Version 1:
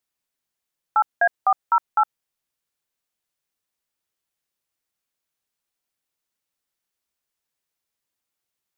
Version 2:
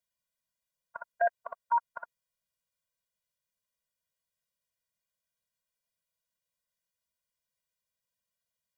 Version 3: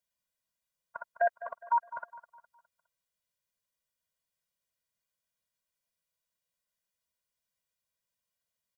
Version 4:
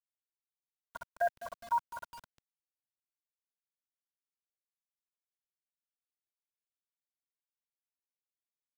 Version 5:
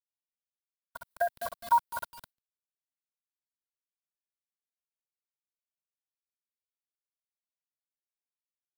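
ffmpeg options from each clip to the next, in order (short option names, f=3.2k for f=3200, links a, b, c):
-af "afftfilt=real='re*eq(mod(floor(b*sr/1024/230),2),0)':imag='im*eq(mod(floor(b*sr/1024/230),2),0)':win_size=1024:overlap=0.75,volume=-2.5dB"
-af "aecho=1:1:206|412|618|824:0.178|0.0711|0.0285|0.0114"
-af "lowshelf=f=140:g=-8.5,acrusher=bits=7:mix=0:aa=0.000001,bass=f=250:g=12,treble=f=4k:g=0,volume=-3.5dB"
-af "agate=range=-33dB:threshold=-55dB:ratio=3:detection=peak,tremolo=f=3.5:d=0.7,aexciter=amount=1.2:drive=7:freq=3.6k,volume=8dB"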